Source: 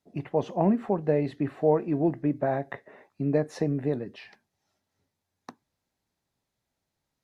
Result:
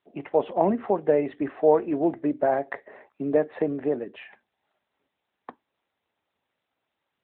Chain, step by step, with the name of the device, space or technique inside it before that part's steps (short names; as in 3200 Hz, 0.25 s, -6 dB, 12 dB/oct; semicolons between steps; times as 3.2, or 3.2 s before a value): telephone (BPF 340–3400 Hz; gain +5.5 dB; AMR-NB 12.2 kbps 8000 Hz)